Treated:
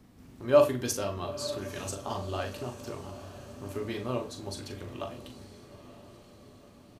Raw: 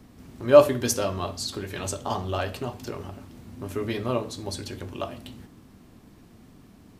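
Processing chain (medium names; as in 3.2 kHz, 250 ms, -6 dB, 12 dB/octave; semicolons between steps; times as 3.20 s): doubling 40 ms -8 dB; echo that smears into a reverb 931 ms, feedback 54%, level -14.5 dB; trim -6.5 dB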